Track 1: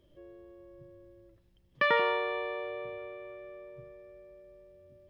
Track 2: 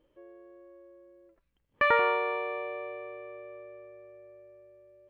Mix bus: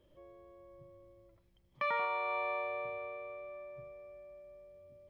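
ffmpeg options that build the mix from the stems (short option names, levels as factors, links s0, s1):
-filter_complex "[0:a]equalizer=f=550:w=1.5:g=3,volume=0.631[s0];[1:a]highpass=460,volume=0.75[s1];[s0][s1]amix=inputs=2:normalize=0,alimiter=level_in=1.19:limit=0.0631:level=0:latency=1:release=414,volume=0.841"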